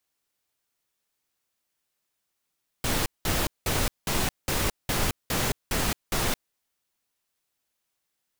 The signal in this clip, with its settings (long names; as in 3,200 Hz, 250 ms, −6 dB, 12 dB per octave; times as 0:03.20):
noise bursts pink, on 0.22 s, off 0.19 s, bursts 9, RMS −25.5 dBFS